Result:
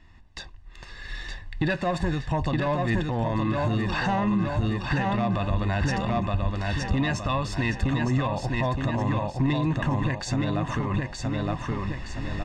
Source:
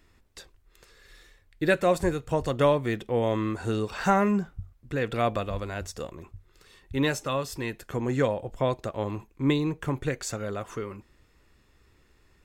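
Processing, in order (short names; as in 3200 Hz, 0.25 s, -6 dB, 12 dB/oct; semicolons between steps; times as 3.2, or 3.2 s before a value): recorder AGC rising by 9.3 dB/s; soft clip -17.5 dBFS, distortion -16 dB; air absorption 120 m; feedback echo 0.917 s, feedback 43%, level -4 dB; limiter -23 dBFS, peak gain reduction 9 dB; comb 1.1 ms, depth 69%; gain +4.5 dB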